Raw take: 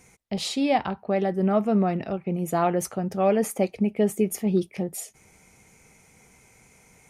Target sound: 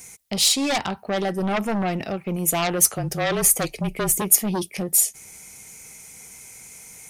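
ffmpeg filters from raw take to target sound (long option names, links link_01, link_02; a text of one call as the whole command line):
ffmpeg -i in.wav -filter_complex "[0:a]aeval=exprs='0.299*(cos(1*acos(clip(val(0)/0.299,-1,1)))-cos(1*PI/2))+0.15*(cos(5*acos(clip(val(0)/0.299,-1,1)))-cos(5*PI/2))+0.0473*(cos(6*acos(clip(val(0)/0.299,-1,1)))-cos(6*PI/2))+0.0119*(cos(8*acos(clip(val(0)/0.299,-1,1)))-cos(8*PI/2))':channel_layout=same,crystalizer=i=5:c=0,asettb=1/sr,asplit=3[link_01][link_02][link_03];[link_01]atrim=end=2.904[link_04];[link_02]atrim=start=2.9:end=4.22,asetpts=PTS-STARTPTS,afade=type=in:duration=0.004:curve=qsin,afade=type=out:start_time=1.316:duration=0.004:curve=qsin,afreqshift=-30[link_05];[link_03]atrim=start=4.216[link_06];[link_04][link_05]acrossfade=duration=0.004:curve1=hsin:curve2=qsin[link_07];[link_07][link_06]acrossfade=duration=0.004:curve1=qsin:curve2=hsin,volume=-9dB" out.wav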